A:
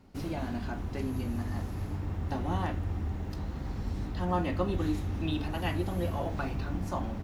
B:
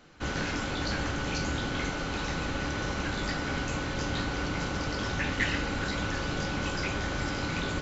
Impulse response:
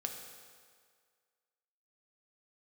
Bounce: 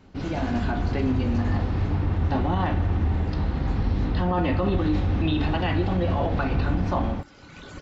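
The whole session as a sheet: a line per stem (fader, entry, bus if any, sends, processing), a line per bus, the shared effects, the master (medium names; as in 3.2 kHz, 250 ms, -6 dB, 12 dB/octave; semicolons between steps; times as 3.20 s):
+1.5 dB, 0.00 s, send -4 dB, low-pass 4.4 kHz 24 dB/octave; level rider gain up to 5.5 dB
-5.5 dB, 0.00 s, no send, reverb removal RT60 0.74 s; auto duck -15 dB, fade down 1.90 s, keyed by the first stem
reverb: on, RT60 1.9 s, pre-delay 3 ms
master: peak limiter -15 dBFS, peak gain reduction 10 dB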